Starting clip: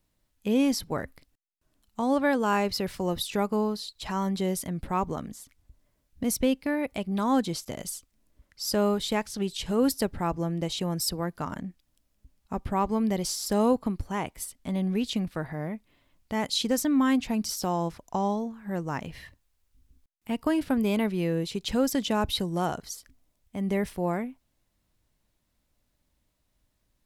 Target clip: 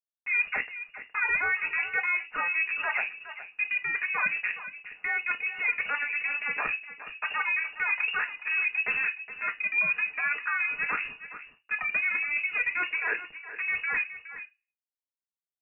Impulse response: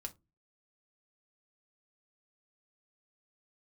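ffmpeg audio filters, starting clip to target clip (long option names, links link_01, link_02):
-filter_complex "[0:a]highpass=frequency=380:poles=1,tiltshelf=frequency=970:gain=3,asplit=2[link_01][link_02];[link_02]alimiter=limit=-23.5dB:level=0:latency=1,volume=1dB[link_03];[link_01][link_03]amix=inputs=2:normalize=0,aphaser=in_gain=1:out_gain=1:delay=3.2:decay=0.38:speed=0.65:type=triangular,areverse,acompressor=threshold=-31dB:ratio=8,areverse,aeval=exprs='val(0)*gte(abs(val(0)),0.00251)':channel_layout=same,acompressor=mode=upward:threshold=-45dB:ratio=2.5,aecho=1:1:722:0.224[link_04];[1:a]atrim=start_sample=2205,asetrate=25578,aresample=44100[link_05];[link_04][link_05]afir=irnorm=-1:irlink=0,asetrate=76440,aresample=44100,lowpass=frequency=2500:width_type=q:width=0.5098,lowpass=frequency=2500:width_type=q:width=0.6013,lowpass=frequency=2500:width_type=q:width=0.9,lowpass=frequency=2500:width_type=q:width=2.563,afreqshift=-2900,volume=5.5dB"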